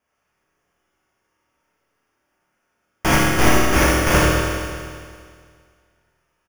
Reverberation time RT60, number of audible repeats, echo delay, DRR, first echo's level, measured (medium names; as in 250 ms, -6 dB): 2.0 s, 1, 77 ms, -7.0 dB, -4.0 dB